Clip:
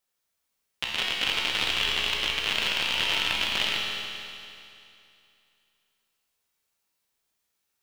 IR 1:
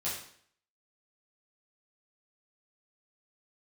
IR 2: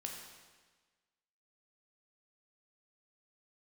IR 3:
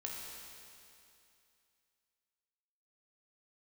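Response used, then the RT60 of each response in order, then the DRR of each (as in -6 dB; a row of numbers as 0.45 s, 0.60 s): 3; 0.60 s, 1.4 s, 2.6 s; -9.5 dB, 0.0 dB, -3.0 dB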